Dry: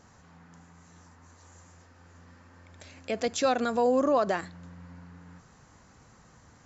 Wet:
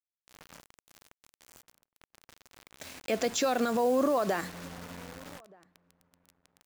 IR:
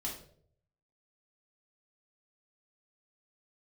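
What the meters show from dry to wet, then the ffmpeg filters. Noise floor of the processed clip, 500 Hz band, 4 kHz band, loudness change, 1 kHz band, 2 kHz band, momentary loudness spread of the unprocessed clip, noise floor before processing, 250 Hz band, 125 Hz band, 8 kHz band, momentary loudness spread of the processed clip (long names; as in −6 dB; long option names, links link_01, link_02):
below −85 dBFS, −2.0 dB, +1.0 dB, −3.0 dB, −2.5 dB, −0.5 dB, 14 LU, −58 dBFS, −1.0 dB, −1.5 dB, can't be measured, 20 LU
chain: -filter_complex "[0:a]highpass=150,alimiter=limit=-23.5dB:level=0:latency=1:release=51,acrusher=bits=7:mix=0:aa=0.000001,asplit=2[link_01][link_02];[link_02]adelay=1224,volume=-26dB,highshelf=frequency=4000:gain=-27.6[link_03];[link_01][link_03]amix=inputs=2:normalize=0,volume=4.5dB"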